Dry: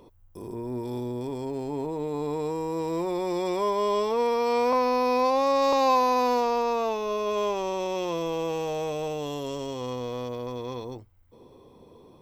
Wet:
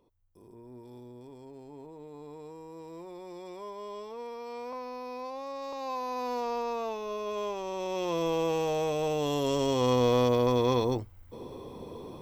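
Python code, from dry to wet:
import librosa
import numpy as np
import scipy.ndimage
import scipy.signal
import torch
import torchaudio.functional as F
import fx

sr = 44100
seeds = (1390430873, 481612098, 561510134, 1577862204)

y = fx.gain(x, sr, db=fx.line((5.74, -16.0), (6.51, -7.0), (7.64, -7.0), (8.26, 0.5), (8.96, 0.5), (10.07, 9.0)))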